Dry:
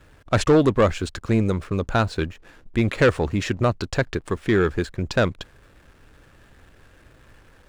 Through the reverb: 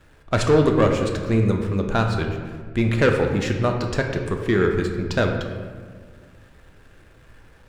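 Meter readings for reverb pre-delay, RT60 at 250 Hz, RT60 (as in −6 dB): 5 ms, 2.2 s, 1.7 s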